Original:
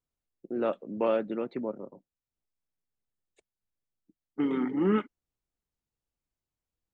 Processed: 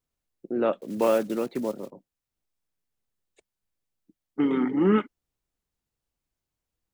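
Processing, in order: 0.81–1.91 block floating point 5-bit; gain +4.5 dB

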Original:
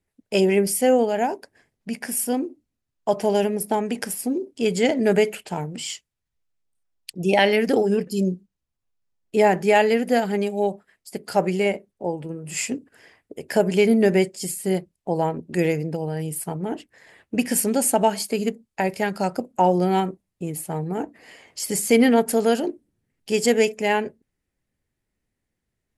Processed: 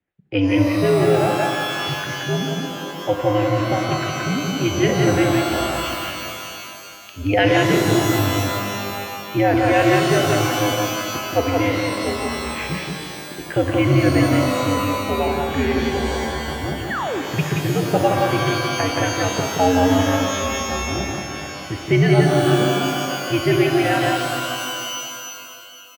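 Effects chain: mistuned SSB -91 Hz 150–3500 Hz; on a send: echo 0.175 s -3 dB; on the sum: painted sound fall, 16.9–17.22, 260–2000 Hz -25 dBFS; shimmer reverb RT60 2.5 s, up +12 st, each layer -2 dB, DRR 5 dB

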